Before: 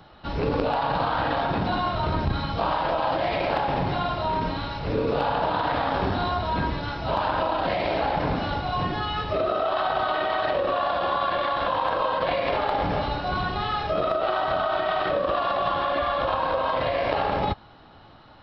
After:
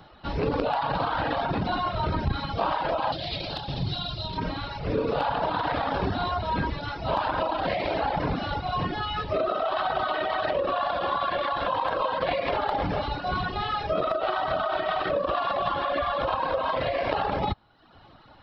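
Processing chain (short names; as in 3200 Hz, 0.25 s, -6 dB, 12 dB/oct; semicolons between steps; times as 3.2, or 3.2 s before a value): reverb removal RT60 0.81 s; 3.12–4.38 graphic EQ 125/250/500/1000/2000/4000 Hz +4/-5/-7/-10/-11/+12 dB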